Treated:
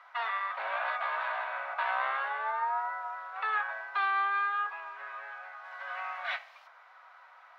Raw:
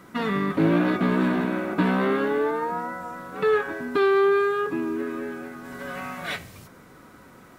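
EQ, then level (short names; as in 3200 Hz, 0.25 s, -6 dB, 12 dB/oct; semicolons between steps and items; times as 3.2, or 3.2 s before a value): steep high-pass 680 Hz 48 dB/oct; air absorption 290 m; 0.0 dB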